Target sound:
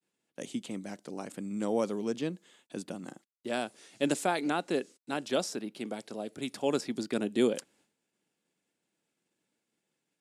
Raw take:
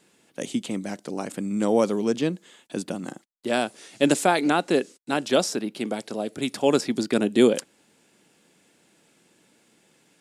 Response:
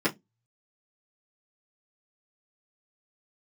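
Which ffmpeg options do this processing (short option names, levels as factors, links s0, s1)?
-af "agate=range=0.0224:threshold=0.00251:ratio=3:detection=peak,volume=0.355"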